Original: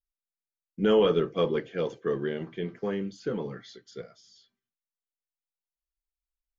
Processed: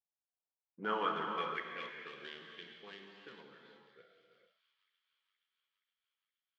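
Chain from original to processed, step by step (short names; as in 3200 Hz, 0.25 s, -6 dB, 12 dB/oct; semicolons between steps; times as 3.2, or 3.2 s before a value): Wiener smoothing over 15 samples; low-pass opened by the level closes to 1800 Hz, open at -23 dBFS; dynamic EQ 510 Hz, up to -7 dB, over -36 dBFS, Q 1.6; band-pass sweep 740 Hz -> 3200 Hz, 0.39–2.11; on a send: thin delay 0.471 s, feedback 66%, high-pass 3000 Hz, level -17 dB; on the sum: non-linear reverb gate 0.48 s flat, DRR 2 dB; gain +3 dB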